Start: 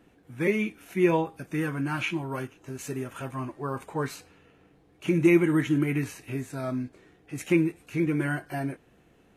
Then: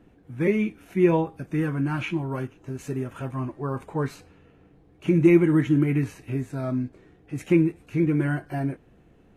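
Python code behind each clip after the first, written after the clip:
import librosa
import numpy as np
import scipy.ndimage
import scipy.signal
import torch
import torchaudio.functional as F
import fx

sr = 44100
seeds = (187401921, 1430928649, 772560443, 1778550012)

y = fx.tilt_eq(x, sr, slope=-2.0)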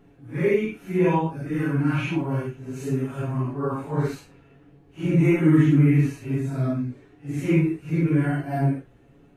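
y = fx.phase_scramble(x, sr, seeds[0], window_ms=200)
y = y + 0.5 * np.pad(y, (int(7.2 * sr / 1000.0), 0))[:len(y)]
y = y * librosa.db_to_amplitude(1.0)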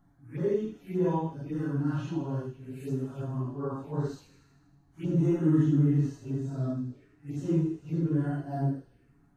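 y = fx.env_phaser(x, sr, low_hz=420.0, high_hz=2300.0, full_db=-24.5)
y = fx.echo_wet_highpass(y, sr, ms=79, feedback_pct=67, hz=2400.0, wet_db=-10)
y = y * librosa.db_to_amplitude(-6.5)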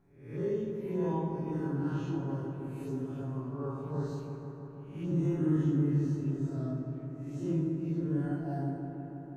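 y = fx.spec_swells(x, sr, rise_s=0.56)
y = fx.echo_wet_lowpass(y, sr, ms=161, feedback_pct=79, hz=1800.0, wet_db=-6.5)
y = y * librosa.db_to_amplitude(-6.0)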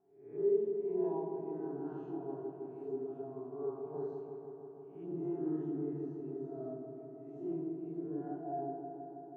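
y = fx.double_bandpass(x, sr, hz=530.0, octaves=0.75)
y = y * librosa.db_to_amplitude(4.0)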